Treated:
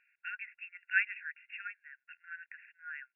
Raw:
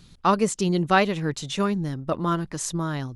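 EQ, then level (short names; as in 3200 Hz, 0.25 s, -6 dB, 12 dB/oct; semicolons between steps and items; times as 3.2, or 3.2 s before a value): brick-wall FIR band-pass 1400–2800 Hz; -3.0 dB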